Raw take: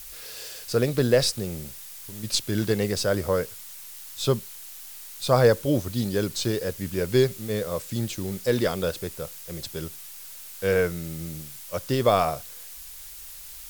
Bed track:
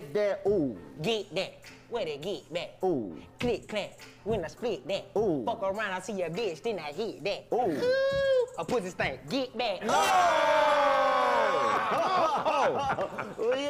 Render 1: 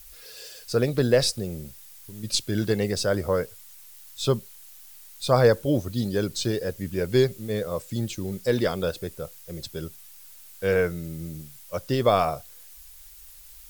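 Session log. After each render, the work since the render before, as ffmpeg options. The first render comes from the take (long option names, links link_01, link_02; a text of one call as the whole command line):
ffmpeg -i in.wav -af "afftdn=noise_reduction=8:noise_floor=-42" out.wav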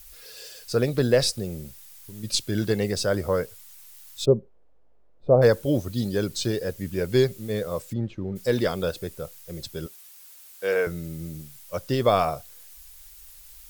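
ffmpeg -i in.wav -filter_complex "[0:a]asplit=3[link_01][link_02][link_03];[link_01]afade=type=out:start_time=4.24:duration=0.02[link_04];[link_02]lowpass=frequency=510:width_type=q:width=2,afade=type=in:start_time=4.24:duration=0.02,afade=type=out:start_time=5.41:duration=0.02[link_05];[link_03]afade=type=in:start_time=5.41:duration=0.02[link_06];[link_04][link_05][link_06]amix=inputs=3:normalize=0,asplit=3[link_07][link_08][link_09];[link_07]afade=type=out:start_time=7.92:duration=0.02[link_10];[link_08]lowpass=1600,afade=type=in:start_time=7.92:duration=0.02,afade=type=out:start_time=8.35:duration=0.02[link_11];[link_09]afade=type=in:start_time=8.35:duration=0.02[link_12];[link_10][link_11][link_12]amix=inputs=3:normalize=0,asettb=1/sr,asplit=3[link_13][link_14][link_15];[link_13]atrim=end=9.864[link_16];[link_14]atrim=start=9.86:end=10.87,asetpts=PTS-STARTPTS,afade=type=in:duration=0.004:curve=qsin,afade=type=out:start_time=1.006:duration=0.004:curve=qsin,highpass=360[link_17];[link_15]atrim=start=10.866[link_18];[link_16][link_17]acrossfade=duration=0.004:curve1=hsin:curve2=qsin[link_19];[link_19][link_18]acrossfade=duration=0.004:curve1=qsin:curve2=hsin" out.wav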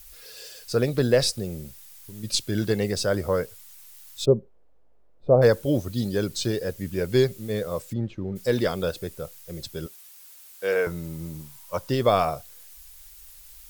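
ffmpeg -i in.wav -filter_complex "[0:a]asettb=1/sr,asplit=3[link_01][link_02][link_03];[link_01]atrim=end=10.864[link_04];[link_02]atrim=start=10.86:end=11.9,asetpts=PTS-STARTPTS,afade=type=in:duration=0.004:curve=qsin,afade=type=out:start_time=1.036:duration=0.004:curve=qsin,equalizer=frequency=960:width_type=o:width=0.4:gain=13.5[link_05];[link_03]atrim=start=11.896[link_06];[link_04][link_05]acrossfade=duration=0.004:curve1=hsin:curve2=qsin[link_07];[link_07][link_06]acrossfade=duration=0.004:curve1=qsin:curve2=hsin" out.wav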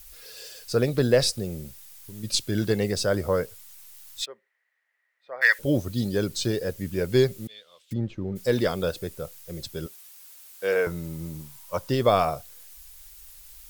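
ffmpeg -i in.wav -filter_complex "[0:a]asplit=3[link_01][link_02][link_03];[link_01]afade=type=out:start_time=4.21:duration=0.02[link_04];[link_02]highpass=frequency=1900:width_type=q:width=15,afade=type=in:start_time=4.21:duration=0.02,afade=type=out:start_time=5.58:duration=0.02[link_05];[link_03]afade=type=in:start_time=5.58:duration=0.02[link_06];[link_04][link_05][link_06]amix=inputs=3:normalize=0,asettb=1/sr,asplit=3[link_07][link_08][link_09];[link_07]atrim=end=7.474[link_10];[link_08]atrim=start=7.47:end=7.91,asetpts=PTS-STARTPTS,afade=type=in:duration=0.004:curve=qsin,afade=type=out:start_time=0.436:duration=0.004:curve=qsin,bandpass=frequency=3300:width_type=q:width=4.4[link_11];[link_09]atrim=start=7.906[link_12];[link_10][link_11]acrossfade=duration=0.004:curve1=hsin:curve2=qsin[link_13];[link_13][link_12]acrossfade=duration=0.004:curve1=qsin:curve2=hsin" out.wav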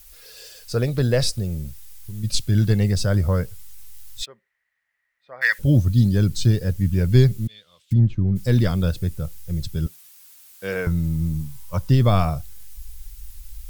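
ffmpeg -i in.wav -af "asubboost=boost=9:cutoff=150" out.wav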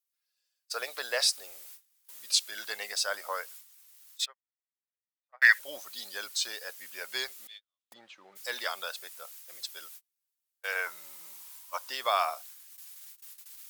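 ffmpeg -i in.wav -af "agate=range=-38dB:threshold=-35dB:ratio=16:detection=peak,highpass=frequency=760:width=0.5412,highpass=frequency=760:width=1.3066" out.wav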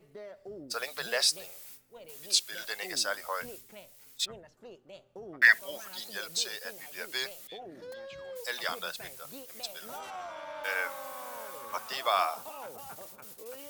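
ffmpeg -i in.wav -i bed.wav -filter_complex "[1:a]volume=-18dB[link_01];[0:a][link_01]amix=inputs=2:normalize=0" out.wav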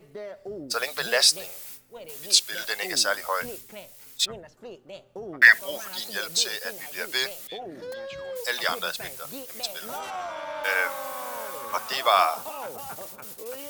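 ffmpeg -i in.wav -af "volume=7.5dB,alimiter=limit=-3dB:level=0:latency=1" out.wav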